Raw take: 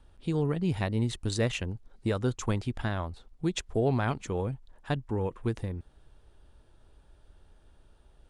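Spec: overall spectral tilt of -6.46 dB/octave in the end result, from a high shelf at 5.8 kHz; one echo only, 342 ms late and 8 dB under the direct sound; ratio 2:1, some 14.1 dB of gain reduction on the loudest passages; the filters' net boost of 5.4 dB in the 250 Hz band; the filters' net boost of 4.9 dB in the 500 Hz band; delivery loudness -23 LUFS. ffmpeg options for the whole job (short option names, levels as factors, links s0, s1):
-af "equalizer=f=250:t=o:g=6,equalizer=f=500:t=o:g=4,highshelf=f=5800:g=6.5,acompressor=threshold=0.00501:ratio=2,aecho=1:1:342:0.398,volume=7.08"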